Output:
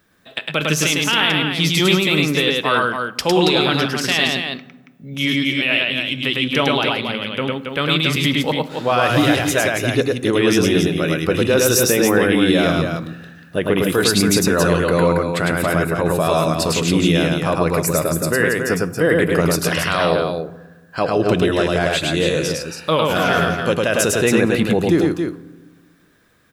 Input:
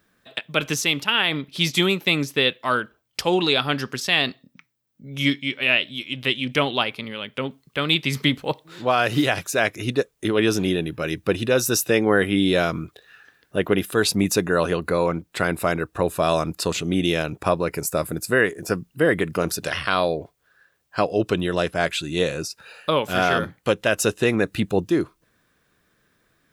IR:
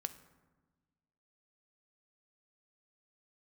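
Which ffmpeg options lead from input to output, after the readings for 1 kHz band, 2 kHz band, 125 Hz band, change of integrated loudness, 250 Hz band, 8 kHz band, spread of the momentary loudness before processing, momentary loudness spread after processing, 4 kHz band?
+4.5 dB, +4.0 dB, +7.0 dB, +5.0 dB, +6.0 dB, +6.5 dB, 8 LU, 8 LU, +4.5 dB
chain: -filter_complex "[0:a]alimiter=limit=-11dB:level=0:latency=1:release=14,aecho=1:1:105|277:0.794|0.501,asplit=2[link_01][link_02];[1:a]atrim=start_sample=2205[link_03];[link_02][link_03]afir=irnorm=-1:irlink=0,volume=6.5dB[link_04];[link_01][link_04]amix=inputs=2:normalize=0,volume=-4.5dB"

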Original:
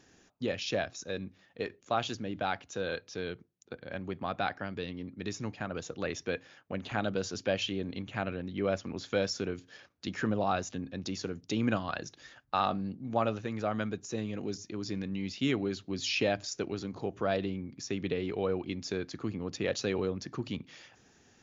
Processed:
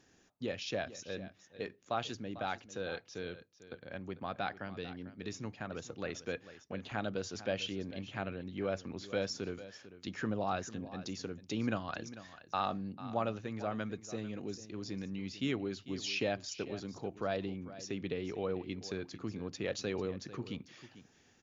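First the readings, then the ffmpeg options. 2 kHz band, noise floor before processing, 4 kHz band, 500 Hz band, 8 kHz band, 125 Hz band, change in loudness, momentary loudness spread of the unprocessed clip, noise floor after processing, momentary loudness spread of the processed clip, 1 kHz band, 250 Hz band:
−5.0 dB, −64 dBFS, −5.0 dB, −5.0 dB, can't be measured, −5.0 dB, −5.0 dB, 9 LU, −67 dBFS, 9 LU, −5.0 dB, −5.0 dB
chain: -af "aecho=1:1:446:0.178,volume=-5dB"

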